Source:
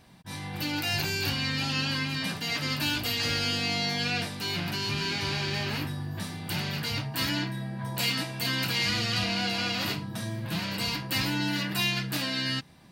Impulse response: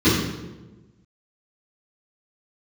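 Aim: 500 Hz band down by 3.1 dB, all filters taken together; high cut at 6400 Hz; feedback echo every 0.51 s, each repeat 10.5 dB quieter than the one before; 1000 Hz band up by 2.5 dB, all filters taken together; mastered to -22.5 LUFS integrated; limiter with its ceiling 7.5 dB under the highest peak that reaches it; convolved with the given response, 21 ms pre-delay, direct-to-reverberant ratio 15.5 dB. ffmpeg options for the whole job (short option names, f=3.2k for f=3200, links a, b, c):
-filter_complex "[0:a]lowpass=6.4k,equalizer=f=500:t=o:g=-6,equalizer=f=1k:t=o:g=5,alimiter=limit=-23dB:level=0:latency=1,aecho=1:1:510|1020|1530:0.299|0.0896|0.0269,asplit=2[a][b];[1:a]atrim=start_sample=2205,adelay=21[c];[b][c]afir=irnorm=-1:irlink=0,volume=-36.5dB[d];[a][d]amix=inputs=2:normalize=0,volume=8.5dB"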